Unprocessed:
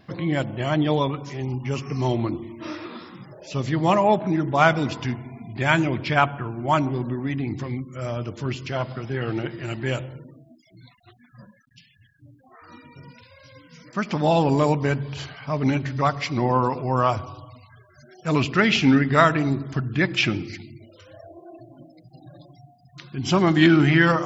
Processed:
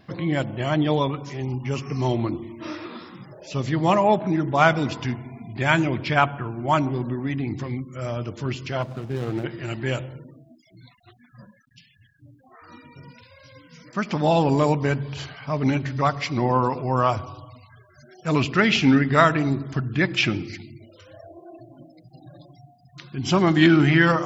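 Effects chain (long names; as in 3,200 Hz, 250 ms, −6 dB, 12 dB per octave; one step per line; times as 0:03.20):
0:08.82–0:09.44: running median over 25 samples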